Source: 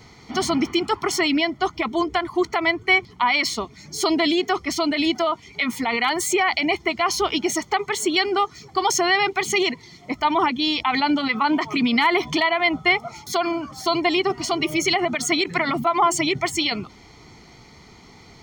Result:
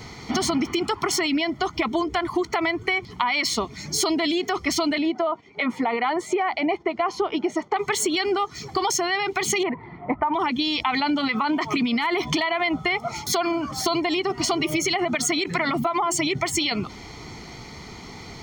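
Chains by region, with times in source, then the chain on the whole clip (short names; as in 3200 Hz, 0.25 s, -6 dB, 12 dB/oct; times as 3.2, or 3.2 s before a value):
4.98–7.76 gate -44 dBFS, range -7 dB + band-pass 560 Hz, Q 0.71
9.63–10.34 LPF 1800 Hz 24 dB/oct + bell 860 Hz +7.5 dB 0.64 oct
whole clip: limiter -14.5 dBFS; compressor, threshold -28 dBFS; gain +7.5 dB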